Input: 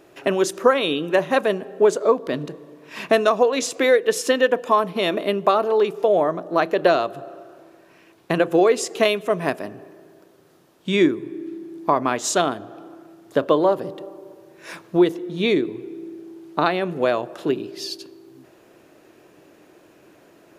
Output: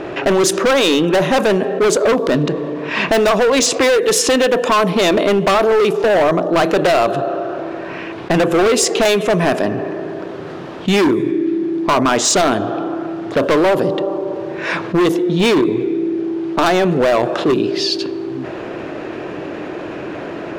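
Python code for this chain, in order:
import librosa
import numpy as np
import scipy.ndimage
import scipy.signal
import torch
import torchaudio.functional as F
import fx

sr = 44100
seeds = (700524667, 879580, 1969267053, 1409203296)

p1 = 10.0 ** (-18.5 / 20.0) * np.tanh(x / 10.0 ** (-18.5 / 20.0))
p2 = x + (p1 * librosa.db_to_amplitude(-10.5))
p3 = fx.env_lowpass(p2, sr, base_hz=2800.0, full_db=-13.0)
p4 = np.clip(p3, -10.0 ** (-18.5 / 20.0), 10.0 ** (-18.5 / 20.0))
p5 = fx.env_flatten(p4, sr, amount_pct=50)
y = p5 * librosa.db_to_amplitude(7.5)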